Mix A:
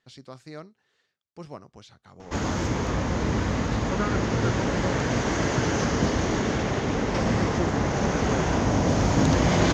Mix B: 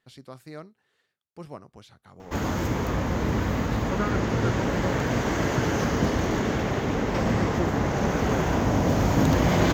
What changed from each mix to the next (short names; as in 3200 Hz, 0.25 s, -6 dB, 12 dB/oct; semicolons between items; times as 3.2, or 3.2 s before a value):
master: remove synth low-pass 6300 Hz, resonance Q 1.6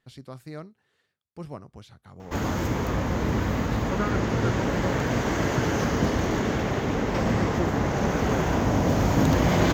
speech: add low shelf 160 Hz +9 dB